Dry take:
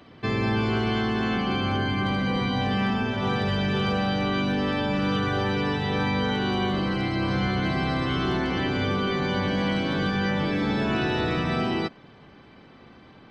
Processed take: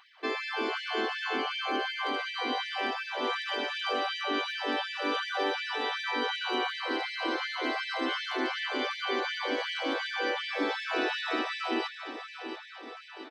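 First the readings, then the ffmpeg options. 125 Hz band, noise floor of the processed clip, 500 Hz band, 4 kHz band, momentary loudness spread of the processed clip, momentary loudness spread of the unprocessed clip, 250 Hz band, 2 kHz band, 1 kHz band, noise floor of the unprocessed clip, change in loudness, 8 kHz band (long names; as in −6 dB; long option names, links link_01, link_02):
below −40 dB, −46 dBFS, −5.5 dB, −1.0 dB, 4 LU, 1 LU, −13.0 dB, −2.0 dB, −3.5 dB, −51 dBFS, −6.0 dB, can't be measured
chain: -af "aecho=1:1:685|1370|2055|2740|3425|4110|4795:0.316|0.187|0.11|0.0649|0.0383|0.0226|0.0133,afftfilt=real='re*gte(b*sr/1024,220*pow(1700/220,0.5+0.5*sin(2*PI*2.7*pts/sr)))':imag='im*gte(b*sr/1024,220*pow(1700/220,0.5+0.5*sin(2*PI*2.7*pts/sr)))':win_size=1024:overlap=0.75,volume=-2dB"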